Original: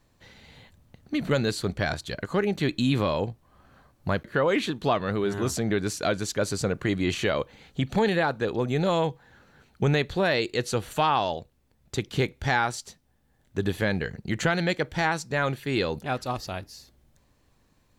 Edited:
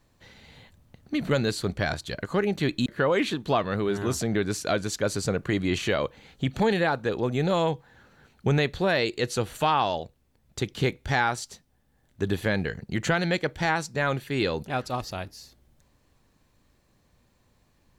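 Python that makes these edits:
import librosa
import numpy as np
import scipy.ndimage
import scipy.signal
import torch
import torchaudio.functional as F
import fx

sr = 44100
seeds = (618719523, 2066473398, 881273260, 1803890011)

y = fx.edit(x, sr, fx.cut(start_s=2.86, length_s=1.36), tone=tone)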